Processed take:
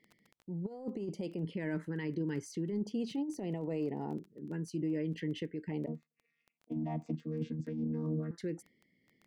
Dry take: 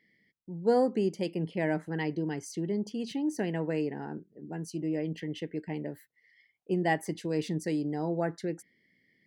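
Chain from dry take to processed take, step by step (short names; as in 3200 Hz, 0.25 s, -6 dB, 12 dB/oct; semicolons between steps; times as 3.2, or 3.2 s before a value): 5.86–8.31 chord vocoder bare fifth, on D#3; LFO notch square 0.35 Hz 730–1600 Hz; crackle 12/s -41 dBFS; negative-ratio compressor -31 dBFS, ratio -0.5; limiter -27.5 dBFS, peak gain reduction 8.5 dB; high shelf 3300 Hz -8.5 dB; noise-modulated level, depth 55%; gain +2 dB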